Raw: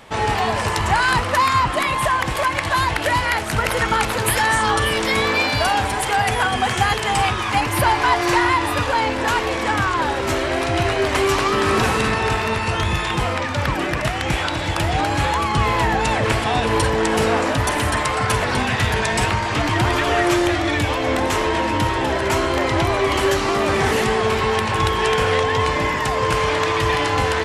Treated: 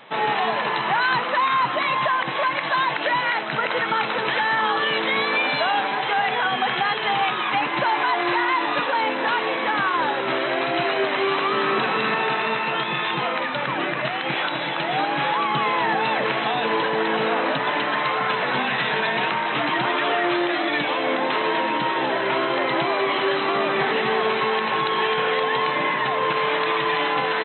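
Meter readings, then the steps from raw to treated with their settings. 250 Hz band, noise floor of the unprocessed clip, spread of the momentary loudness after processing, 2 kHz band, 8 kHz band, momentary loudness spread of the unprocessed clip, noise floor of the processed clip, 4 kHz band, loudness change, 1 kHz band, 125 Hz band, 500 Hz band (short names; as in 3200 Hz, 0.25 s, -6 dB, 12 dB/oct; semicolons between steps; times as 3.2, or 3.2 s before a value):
-5.5 dB, -24 dBFS, 3 LU, -1.5 dB, under -40 dB, 4 LU, -26 dBFS, -2.0 dB, -2.5 dB, -2.0 dB, -15.5 dB, -3.5 dB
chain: FFT band-pass 120–4100 Hz; low shelf 280 Hz -9.5 dB; limiter -12.5 dBFS, peak gain reduction 5.5 dB; on a send: feedback echo 0.502 s, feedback 50%, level -20 dB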